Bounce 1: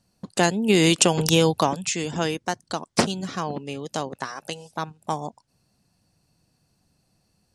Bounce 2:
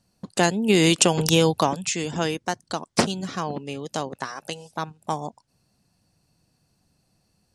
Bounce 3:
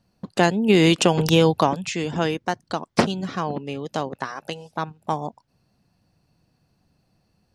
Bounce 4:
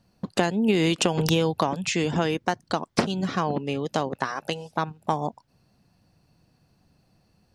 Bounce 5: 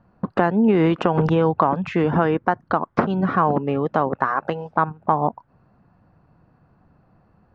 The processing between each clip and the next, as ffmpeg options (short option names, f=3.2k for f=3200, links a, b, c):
-af anull
-af "equalizer=f=8.6k:t=o:w=1.4:g=-12.5,volume=2.5dB"
-af "acompressor=threshold=-21dB:ratio=6,volume=2.5dB"
-filter_complex "[0:a]asplit=2[a][b];[b]alimiter=limit=-16dB:level=0:latency=1:release=132,volume=2dB[c];[a][c]amix=inputs=2:normalize=0,lowpass=f=1.3k:t=q:w=1.9,volume=-1dB"